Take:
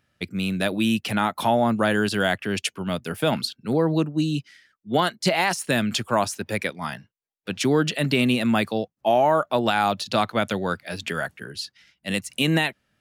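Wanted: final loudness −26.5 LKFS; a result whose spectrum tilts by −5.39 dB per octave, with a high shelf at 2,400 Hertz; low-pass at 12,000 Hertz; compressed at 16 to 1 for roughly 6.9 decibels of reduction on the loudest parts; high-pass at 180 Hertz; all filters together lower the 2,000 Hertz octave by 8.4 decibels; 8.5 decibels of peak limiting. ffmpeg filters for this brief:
ffmpeg -i in.wav -af "highpass=180,lowpass=12000,equalizer=frequency=2000:width_type=o:gain=-7.5,highshelf=frequency=2400:gain=-8,acompressor=threshold=-23dB:ratio=16,volume=6dB,alimiter=limit=-16dB:level=0:latency=1" out.wav

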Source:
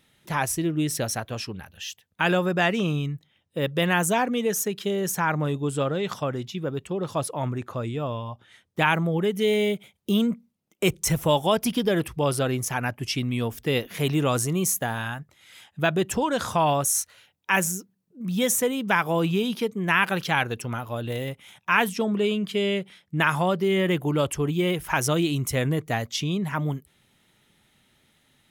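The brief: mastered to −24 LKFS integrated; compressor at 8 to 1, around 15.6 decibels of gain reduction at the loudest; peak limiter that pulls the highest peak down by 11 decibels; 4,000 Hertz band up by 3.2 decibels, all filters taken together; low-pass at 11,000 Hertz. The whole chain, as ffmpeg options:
ffmpeg -i in.wav -af "lowpass=11000,equalizer=frequency=4000:width_type=o:gain=4.5,acompressor=threshold=-33dB:ratio=8,volume=13.5dB,alimiter=limit=-13dB:level=0:latency=1" out.wav

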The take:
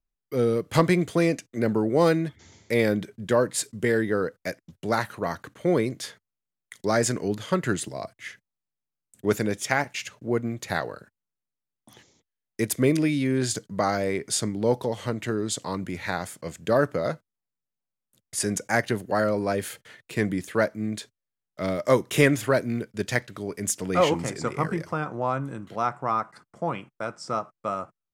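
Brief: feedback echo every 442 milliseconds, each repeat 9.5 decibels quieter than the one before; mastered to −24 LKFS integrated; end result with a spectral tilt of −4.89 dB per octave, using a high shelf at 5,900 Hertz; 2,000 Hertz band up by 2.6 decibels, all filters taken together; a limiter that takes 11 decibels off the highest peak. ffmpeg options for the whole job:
ffmpeg -i in.wav -af "equalizer=frequency=2000:width_type=o:gain=3.5,highshelf=frequency=5900:gain=-3,alimiter=limit=-15dB:level=0:latency=1,aecho=1:1:442|884|1326|1768:0.335|0.111|0.0365|0.012,volume=4.5dB" out.wav

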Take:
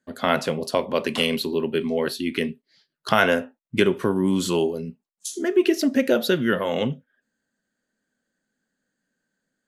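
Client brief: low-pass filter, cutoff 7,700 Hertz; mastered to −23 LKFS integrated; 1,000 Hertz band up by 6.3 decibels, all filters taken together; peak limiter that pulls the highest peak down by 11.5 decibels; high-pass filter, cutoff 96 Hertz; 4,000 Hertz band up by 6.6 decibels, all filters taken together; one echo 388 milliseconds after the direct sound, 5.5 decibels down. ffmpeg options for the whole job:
ffmpeg -i in.wav -af "highpass=96,lowpass=7700,equalizer=frequency=1000:width_type=o:gain=8,equalizer=frequency=4000:width_type=o:gain=8.5,alimiter=limit=-9dB:level=0:latency=1,aecho=1:1:388:0.531,volume=-0.5dB" out.wav

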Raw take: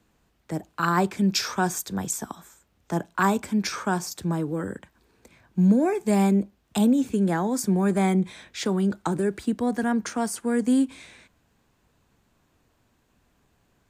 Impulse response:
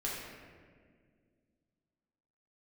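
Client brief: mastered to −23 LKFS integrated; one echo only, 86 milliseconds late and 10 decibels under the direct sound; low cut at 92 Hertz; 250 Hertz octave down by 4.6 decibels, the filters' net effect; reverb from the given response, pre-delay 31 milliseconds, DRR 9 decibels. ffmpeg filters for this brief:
-filter_complex "[0:a]highpass=92,equalizer=frequency=250:width_type=o:gain=-6,aecho=1:1:86:0.316,asplit=2[link_01][link_02];[1:a]atrim=start_sample=2205,adelay=31[link_03];[link_02][link_03]afir=irnorm=-1:irlink=0,volume=-12.5dB[link_04];[link_01][link_04]amix=inputs=2:normalize=0,volume=4dB"

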